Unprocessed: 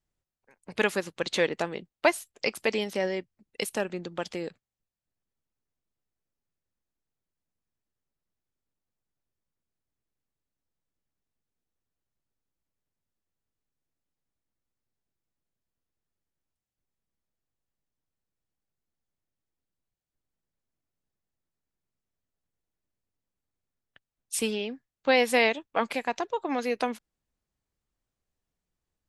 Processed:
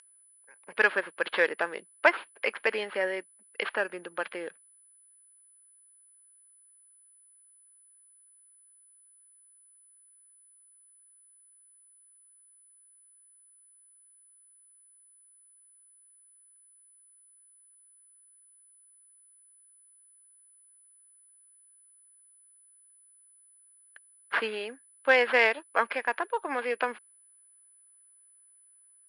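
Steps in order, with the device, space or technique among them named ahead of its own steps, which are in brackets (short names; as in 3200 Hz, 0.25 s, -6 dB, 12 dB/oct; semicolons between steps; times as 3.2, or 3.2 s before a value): toy sound module (decimation joined by straight lines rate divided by 6×; pulse-width modulation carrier 10000 Hz; speaker cabinet 560–4900 Hz, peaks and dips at 740 Hz -6 dB, 1600 Hz +7 dB, 3800 Hz -6 dB); gain +3.5 dB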